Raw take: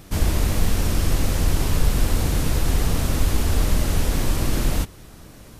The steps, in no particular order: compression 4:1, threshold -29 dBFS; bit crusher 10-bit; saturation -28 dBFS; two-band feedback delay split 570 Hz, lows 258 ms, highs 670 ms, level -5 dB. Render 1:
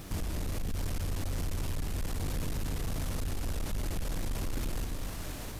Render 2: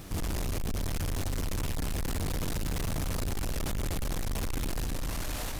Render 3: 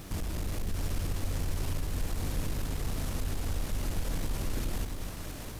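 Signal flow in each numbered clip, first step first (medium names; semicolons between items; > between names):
bit crusher > compression > two-band feedback delay > saturation; two-band feedback delay > saturation > compression > bit crusher; compression > saturation > two-band feedback delay > bit crusher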